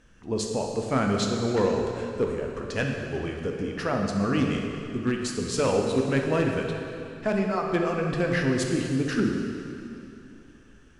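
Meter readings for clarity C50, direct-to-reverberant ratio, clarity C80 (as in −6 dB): 2.5 dB, 1.0 dB, 3.5 dB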